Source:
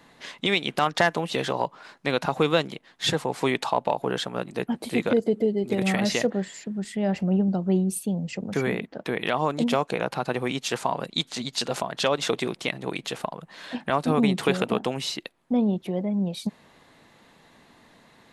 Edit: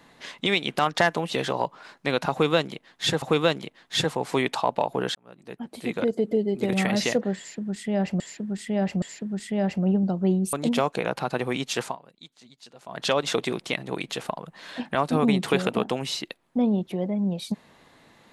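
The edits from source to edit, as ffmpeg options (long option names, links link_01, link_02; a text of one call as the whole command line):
ffmpeg -i in.wav -filter_complex "[0:a]asplit=8[link_01][link_02][link_03][link_04][link_05][link_06][link_07][link_08];[link_01]atrim=end=3.222[link_09];[link_02]atrim=start=2.308:end=4.24,asetpts=PTS-STARTPTS,afade=type=out:start_time=1.928:duration=0.004:curve=hsin[link_10];[link_03]atrim=start=4.24:end=7.292,asetpts=PTS-STARTPTS,afade=type=in:duration=1.26[link_11];[link_04]atrim=start=6.468:end=7.292[link_12];[link_05]atrim=start=6.468:end=7.982[link_13];[link_06]atrim=start=9.478:end=10.92,asetpts=PTS-STARTPTS,afade=type=out:start_time=1.322:duration=0.12:silence=0.0891251[link_14];[link_07]atrim=start=10.92:end=11.81,asetpts=PTS-STARTPTS,volume=-21dB[link_15];[link_08]atrim=start=11.81,asetpts=PTS-STARTPTS,afade=type=in:duration=0.12:silence=0.0891251[link_16];[link_10][link_11]concat=n=2:v=0:a=1[link_17];[link_09][link_17]acrossfade=duration=0.004:curve1=hsin:curve2=hsin[link_18];[link_18][link_12]acrossfade=duration=0.004:curve1=hsin:curve2=hsin[link_19];[link_19][link_13]acrossfade=duration=0.004:curve1=hsin:curve2=hsin[link_20];[link_14][link_15][link_16]concat=n=3:v=0:a=1[link_21];[link_20][link_21]acrossfade=duration=0.004:curve1=hsin:curve2=hsin" out.wav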